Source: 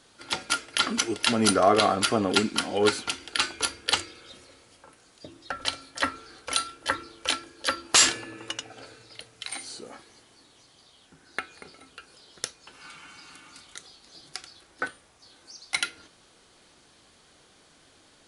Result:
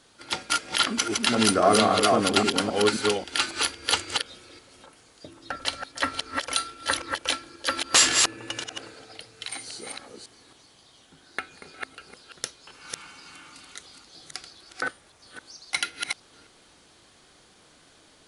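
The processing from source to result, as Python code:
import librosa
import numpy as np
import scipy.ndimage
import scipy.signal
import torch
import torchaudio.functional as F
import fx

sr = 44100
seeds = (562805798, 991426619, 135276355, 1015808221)

y = fx.reverse_delay(x, sr, ms=270, wet_db=-3.0)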